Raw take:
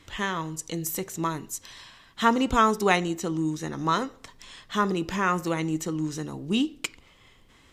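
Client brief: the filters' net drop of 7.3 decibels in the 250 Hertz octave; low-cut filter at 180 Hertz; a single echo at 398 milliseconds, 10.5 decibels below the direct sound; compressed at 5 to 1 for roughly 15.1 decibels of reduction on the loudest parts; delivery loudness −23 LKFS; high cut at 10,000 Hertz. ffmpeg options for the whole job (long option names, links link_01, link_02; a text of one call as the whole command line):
ffmpeg -i in.wav -af "highpass=180,lowpass=10000,equalizer=frequency=250:width_type=o:gain=-8.5,acompressor=threshold=-33dB:ratio=5,aecho=1:1:398:0.299,volume=14.5dB" out.wav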